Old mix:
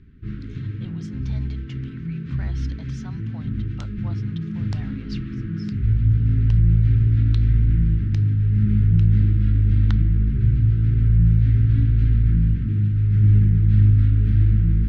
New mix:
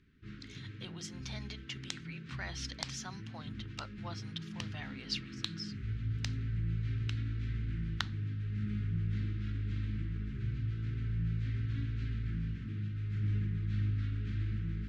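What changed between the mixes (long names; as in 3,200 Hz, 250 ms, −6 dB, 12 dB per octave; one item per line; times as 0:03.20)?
first sound −8.5 dB
second sound: entry −1.90 s
master: add spectral tilt +3 dB per octave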